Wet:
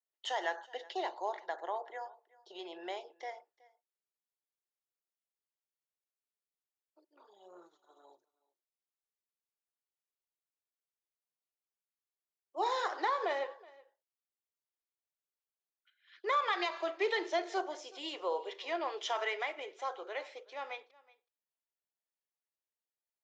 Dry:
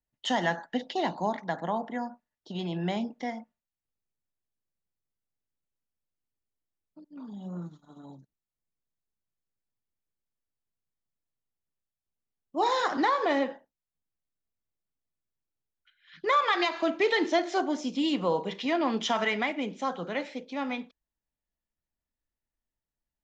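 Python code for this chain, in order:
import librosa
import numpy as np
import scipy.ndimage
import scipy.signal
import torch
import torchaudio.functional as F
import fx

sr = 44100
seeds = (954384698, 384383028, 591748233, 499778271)

y = scipy.signal.sosfilt(scipy.signal.ellip(4, 1.0, 40, 370.0, 'highpass', fs=sr, output='sos'), x)
y = y + 10.0 ** (-23.0 / 20.0) * np.pad(y, (int(372 * sr / 1000.0), 0))[:len(y)]
y = F.gain(torch.from_numpy(y), -6.5).numpy()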